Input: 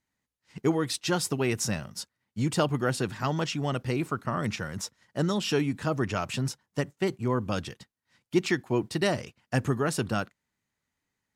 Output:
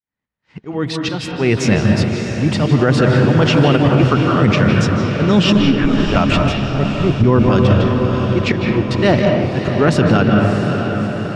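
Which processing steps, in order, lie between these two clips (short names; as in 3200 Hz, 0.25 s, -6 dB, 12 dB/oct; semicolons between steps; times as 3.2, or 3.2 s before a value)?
opening faded in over 1.96 s; 5.54–6.16 LPC vocoder at 8 kHz pitch kept; 6.66–7.24 tilt -3.5 dB/oct; auto swell 0.233 s; LPF 3000 Hz 12 dB/oct; reverb RT60 1.0 s, pre-delay 0.147 s, DRR 3 dB; dynamic EQ 1100 Hz, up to -4 dB, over -46 dBFS, Q 0.82; diffused feedback echo 0.637 s, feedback 57%, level -8.5 dB; maximiser +21.5 dB; gain -2 dB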